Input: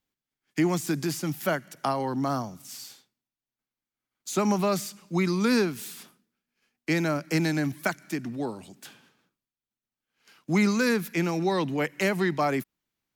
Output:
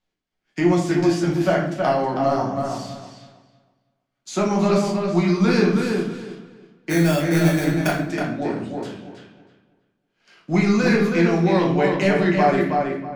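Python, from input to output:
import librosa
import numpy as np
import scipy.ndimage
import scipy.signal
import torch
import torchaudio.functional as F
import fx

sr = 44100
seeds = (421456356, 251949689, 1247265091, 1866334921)

p1 = scipy.signal.sosfilt(scipy.signal.butter(2, 5700.0, 'lowpass', fs=sr, output='sos'), x)
p2 = fx.peak_eq(p1, sr, hz=680.0, db=5.5, octaves=0.33)
p3 = 10.0 ** (-24.5 / 20.0) * np.tanh(p2 / 10.0 ** (-24.5 / 20.0))
p4 = p2 + (p3 * 10.0 ** (-9.0 / 20.0))
p5 = fx.sample_hold(p4, sr, seeds[0], rate_hz=4000.0, jitter_pct=0, at=(6.89, 7.87), fade=0.02)
p6 = fx.echo_filtered(p5, sr, ms=321, feedback_pct=24, hz=3400.0, wet_db=-4)
p7 = fx.room_shoebox(p6, sr, seeds[1], volume_m3=96.0, walls='mixed', distance_m=0.96)
y = p7 * 10.0 ** (-1.0 / 20.0)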